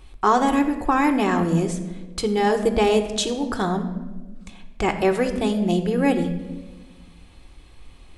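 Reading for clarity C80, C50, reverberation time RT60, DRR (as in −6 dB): 11.5 dB, 9.5 dB, 1.3 s, 4.0 dB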